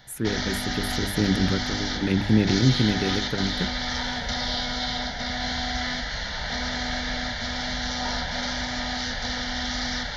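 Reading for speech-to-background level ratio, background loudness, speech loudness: 2.0 dB, -27.5 LUFS, -25.5 LUFS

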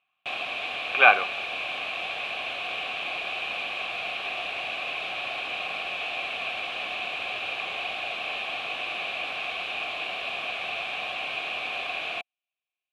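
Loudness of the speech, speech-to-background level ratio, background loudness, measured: -19.5 LUFS, 10.5 dB, -30.0 LUFS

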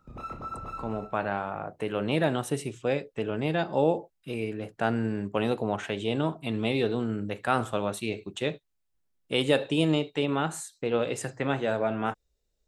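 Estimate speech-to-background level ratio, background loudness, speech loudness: 10.0 dB, -39.5 LUFS, -29.5 LUFS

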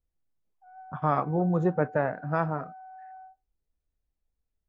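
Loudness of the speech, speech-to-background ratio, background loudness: -28.0 LUFS, 19.5 dB, -47.5 LUFS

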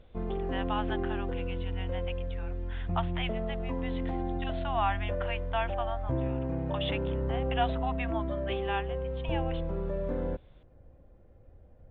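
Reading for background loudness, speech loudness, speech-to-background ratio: -34.0 LUFS, -37.5 LUFS, -3.5 dB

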